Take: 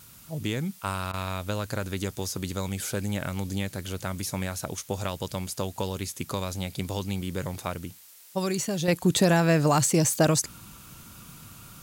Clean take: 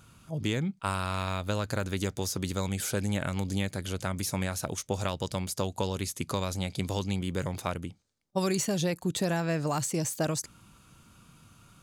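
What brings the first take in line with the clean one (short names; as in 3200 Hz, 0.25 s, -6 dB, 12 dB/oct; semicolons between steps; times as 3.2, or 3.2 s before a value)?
interpolate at 1.12, 13 ms; noise print and reduce 9 dB; gain 0 dB, from 8.88 s -8 dB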